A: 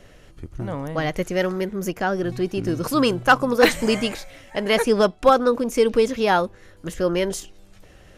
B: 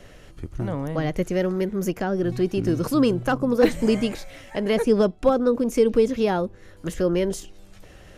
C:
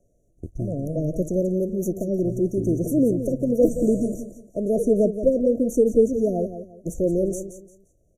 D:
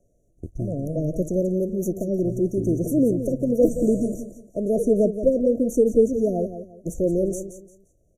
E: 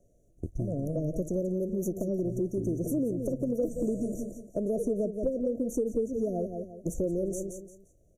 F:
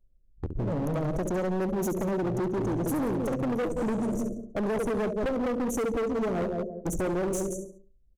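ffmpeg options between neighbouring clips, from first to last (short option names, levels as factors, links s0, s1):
-filter_complex "[0:a]acrossover=split=500[s0][s1];[s1]acompressor=threshold=0.0112:ratio=2[s2];[s0][s2]amix=inputs=2:normalize=0,volume=1.26"
-filter_complex "[0:a]agate=range=0.126:threshold=0.0224:ratio=16:detection=peak,asplit=2[s0][s1];[s1]aecho=0:1:174|348|522:0.299|0.0836|0.0234[s2];[s0][s2]amix=inputs=2:normalize=0,afftfilt=real='re*(1-between(b*sr/4096,720,5700))':imag='im*(1-between(b*sr/4096,720,5700))':win_size=4096:overlap=0.75"
-af anull
-af "acompressor=threshold=0.0398:ratio=4"
-af "anlmdn=0.0398,aecho=1:1:69|138|207:0.316|0.0917|0.0266,volume=42.2,asoftclip=hard,volume=0.0237,volume=2.11"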